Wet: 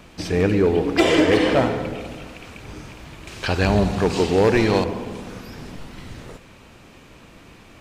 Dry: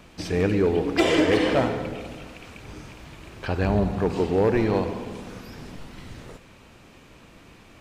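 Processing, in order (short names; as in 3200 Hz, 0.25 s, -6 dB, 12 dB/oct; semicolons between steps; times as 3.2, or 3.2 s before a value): 3.27–4.84 bell 6100 Hz +11 dB 2.8 oct; gain +3.5 dB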